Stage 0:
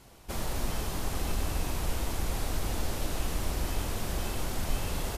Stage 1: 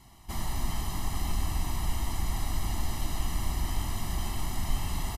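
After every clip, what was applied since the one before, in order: comb 1 ms, depth 88%; trim -3.5 dB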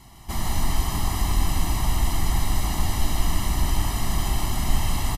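delay 156 ms -3.5 dB; trim +6.5 dB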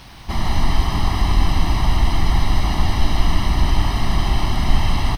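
in parallel at -7.5 dB: word length cut 6-bit, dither triangular; on the sum: Savitzky-Golay filter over 15 samples; trim +3 dB

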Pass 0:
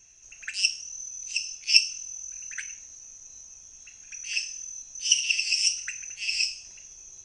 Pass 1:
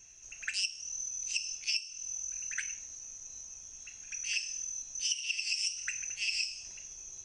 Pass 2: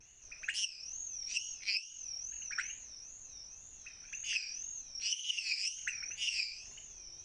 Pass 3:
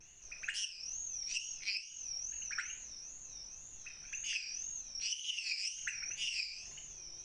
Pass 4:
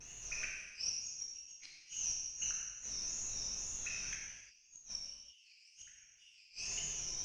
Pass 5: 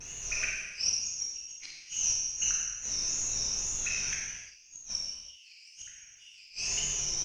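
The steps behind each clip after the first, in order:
compression 20:1, threshold -29 dBFS, peak gain reduction 19 dB
wow and flutter 140 cents; treble shelf 6 kHz -9 dB
compression 2:1, threshold -39 dBFS, peak gain reduction 6 dB; reverberation RT60 0.55 s, pre-delay 6 ms, DRR 8.5 dB; trim +1 dB
inverted gate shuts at -34 dBFS, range -33 dB; gated-style reverb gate 390 ms falling, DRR -3 dB; trim +4 dB
doubling 49 ms -6.5 dB; trim +8.5 dB

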